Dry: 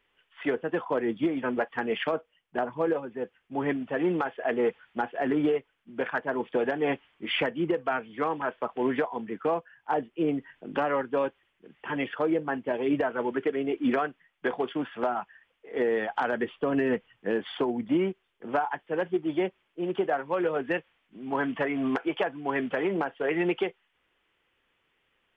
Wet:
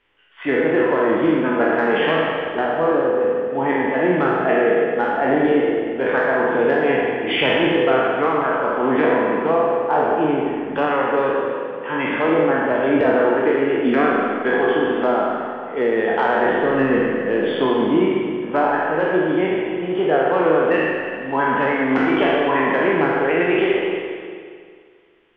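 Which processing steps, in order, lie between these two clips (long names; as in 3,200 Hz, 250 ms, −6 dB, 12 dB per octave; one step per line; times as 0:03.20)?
peak hold with a decay on every bin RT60 1.49 s
high-frequency loss of the air 79 metres
spring reverb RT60 2 s, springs 38/44 ms, chirp 45 ms, DRR 1.5 dB
level +4.5 dB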